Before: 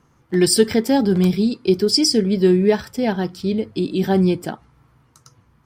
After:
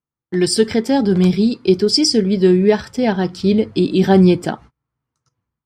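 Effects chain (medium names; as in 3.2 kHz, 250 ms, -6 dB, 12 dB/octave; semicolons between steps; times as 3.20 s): low-pass 8.3 kHz 12 dB/octave; gate -43 dBFS, range -32 dB; level rider gain up to 13.5 dB; trim -1 dB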